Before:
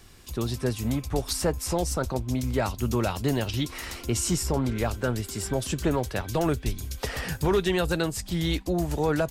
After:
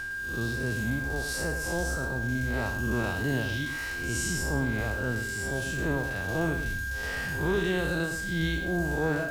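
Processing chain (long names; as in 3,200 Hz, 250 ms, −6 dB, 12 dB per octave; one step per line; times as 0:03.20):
spectrum smeared in time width 156 ms
reverb reduction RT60 0.57 s
reversed playback
upward compression, threshold −36 dBFS
reversed playback
steady tone 1,600 Hz −33 dBFS
feedback echo at a low word length 108 ms, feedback 35%, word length 8 bits, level −8.5 dB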